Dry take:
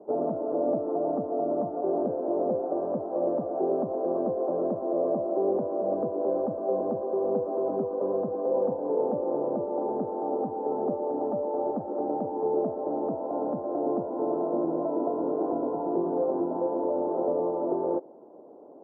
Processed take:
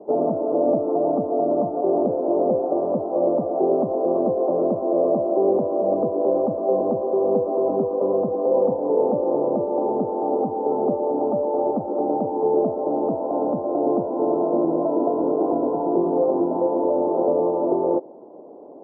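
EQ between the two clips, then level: LPF 1200 Hz 24 dB/oct; +7.0 dB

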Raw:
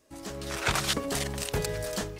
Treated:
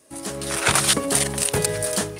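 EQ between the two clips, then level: HPF 98 Hz 12 dB/oct; bell 9500 Hz +14 dB 0.34 oct; +7.5 dB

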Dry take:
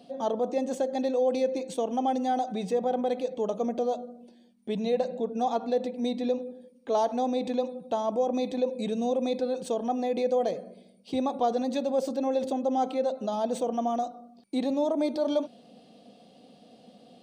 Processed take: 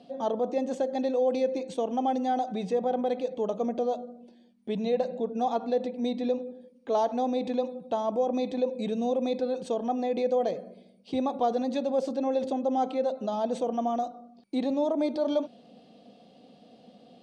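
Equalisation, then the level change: air absorption 68 m; 0.0 dB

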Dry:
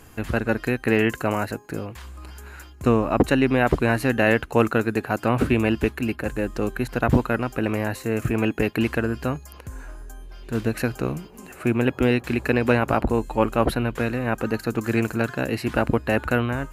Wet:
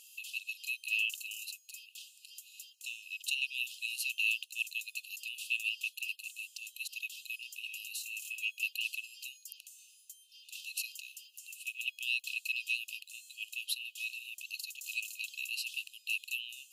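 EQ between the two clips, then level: brick-wall FIR high-pass 2500 Hz; 0.0 dB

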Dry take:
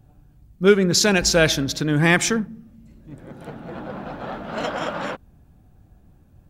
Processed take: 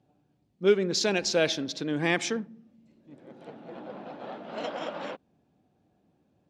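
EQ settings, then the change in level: BPF 270–4800 Hz; bell 1400 Hz -7.5 dB 1.2 oct; -5.0 dB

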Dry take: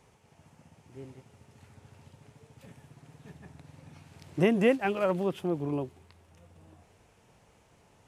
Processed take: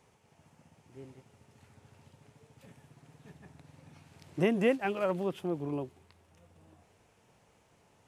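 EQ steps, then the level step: low shelf 62 Hz -8.5 dB; -3.0 dB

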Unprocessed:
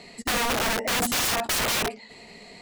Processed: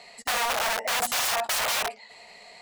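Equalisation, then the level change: resonant low shelf 460 Hz -12 dB, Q 1.5; -1.5 dB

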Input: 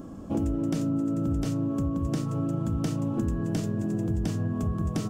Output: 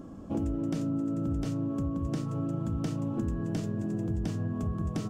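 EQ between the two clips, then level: high shelf 7800 Hz -7 dB; -3.5 dB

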